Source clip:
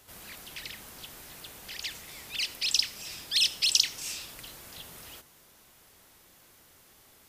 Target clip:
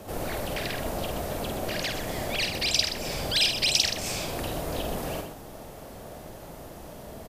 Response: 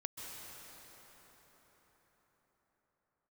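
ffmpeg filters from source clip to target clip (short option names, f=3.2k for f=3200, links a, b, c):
-filter_complex "[0:a]highpass=150,afreqshift=-190,equalizer=f=640:t=o:w=0.78:g=10,asplit=2[a][b];[b]acompressor=threshold=-38dB:ratio=6,volume=1.5dB[c];[a][c]amix=inputs=2:normalize=0,tiltshelf=f=840:g=9,asplit=2[d][e];[e]aecho=0:1:49.56|125.4:0.501|0.355[f];[d][f]amix=inputs=2:normalize=0,volume=6.5dB"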